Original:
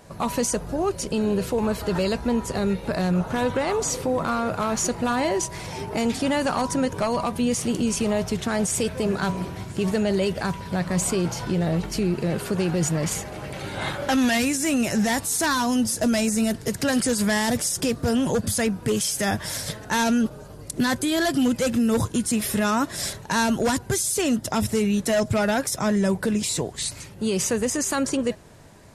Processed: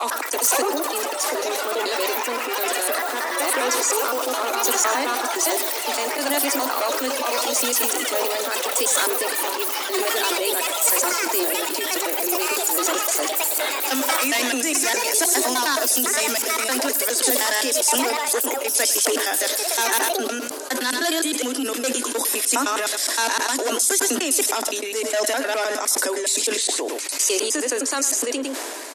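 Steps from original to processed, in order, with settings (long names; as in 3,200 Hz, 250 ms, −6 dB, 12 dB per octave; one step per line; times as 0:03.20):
slices reordered back to front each 103 ms, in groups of 3
Butterworth high-pass 260 Hz 96 dB per octave
spectral tilt +2 dB per octave
delay with pitch and tempo change per echo 109 ms, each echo +6 semitones, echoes 3
single-tap delay 106 ms −14 dB
level that may fall only so fast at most 21 dB per second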